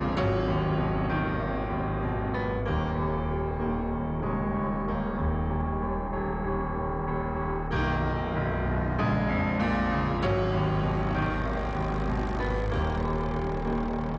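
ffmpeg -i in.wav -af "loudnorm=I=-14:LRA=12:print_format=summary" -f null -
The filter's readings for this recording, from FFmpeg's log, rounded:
Input Integrated:    -28.9 LUFS
Input True Peak:     -18.2 dBTP
Input LRA:             2.5 LU
Input Threshold:     -38.9 LUFS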